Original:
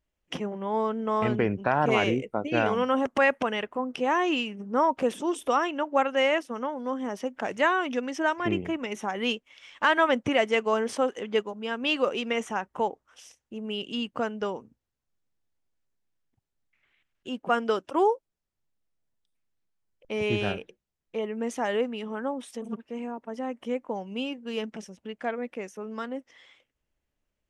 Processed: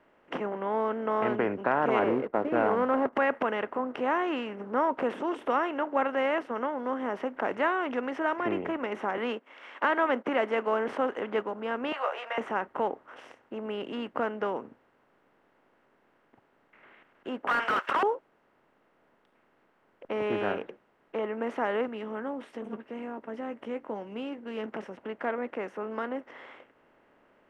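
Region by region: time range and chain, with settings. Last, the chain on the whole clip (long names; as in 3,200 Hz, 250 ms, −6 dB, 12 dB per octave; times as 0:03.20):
0:01.99–0:03.13: low-pass filter 1,200 Hz + leveller curve on the samples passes 1
0:09.17–0:10.88: noise gate −41 dBFS, range −9 dB + high-pass filter 200 Hz 24 dB per octave + one half of a high-frequency compander encoder only
0:11.92–0:12.38: elliptic high-pass filter 640 Hz, stop band 70 dB + double-tracking delay 14 ms −3 dB
0:17.47–0:18.03: high-pass filter 1,200 Hz 24 dB per octave + mid-hump overdrive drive 37 dB, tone 7,800 Hz, clips at −15.5 dBFS
0:21.87–0:24.66: parametric band 970 Hz −11 dB 2.4 octaves + double-tracking delay 14 ms −11.5 dB
whole clip: compressor on every frequency bin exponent 0.6; three-way crossover with the lows and the highs turned down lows −13 dB, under 180 Hz, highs −21 dB, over 2,300 Hz; level −5.5 dB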